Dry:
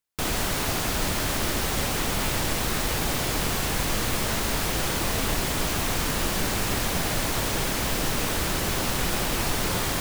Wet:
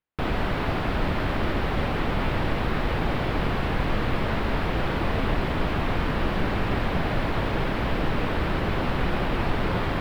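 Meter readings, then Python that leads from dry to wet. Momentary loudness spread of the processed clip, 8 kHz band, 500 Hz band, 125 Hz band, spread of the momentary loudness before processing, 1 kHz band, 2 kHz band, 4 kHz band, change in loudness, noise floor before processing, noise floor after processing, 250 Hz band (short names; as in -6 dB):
1 LU, -25.5 dB, +2.5 dB, +3.5 dB, 0 LU, +1.5 dB, -0.5 dB, -7.5 dB, -1.5 dB, -27 dBFS, -27 dBFS, +3.0 dB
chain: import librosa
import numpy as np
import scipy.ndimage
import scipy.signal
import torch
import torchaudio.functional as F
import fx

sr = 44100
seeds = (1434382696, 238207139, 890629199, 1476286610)

y = fx.air_absorb(x, sr, metres=430.0)
y = F.gain(torch.from_numpy(y), 3.5).numpy()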